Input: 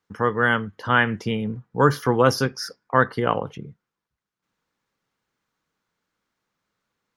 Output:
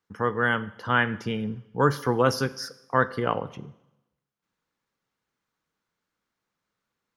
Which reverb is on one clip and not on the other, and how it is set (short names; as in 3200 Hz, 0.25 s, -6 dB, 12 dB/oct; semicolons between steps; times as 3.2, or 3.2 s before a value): Schroeder reverb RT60 0.94 s, combs from 33 ms, DRR 17 dB; gain -4 dB